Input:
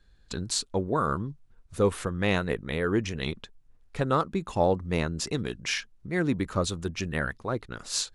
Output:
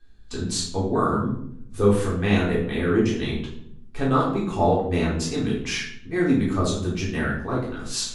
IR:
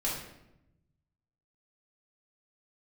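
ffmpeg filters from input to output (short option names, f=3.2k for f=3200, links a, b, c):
-filter_complex "[0:a]equalizer=f=260:t=o:w=0.2:g=7.5[a];[1:a]atrim=start_sample=2205,asetrate=61740,aresample=44100[b];[a][b]afir=irnorm=-1:irlink=0"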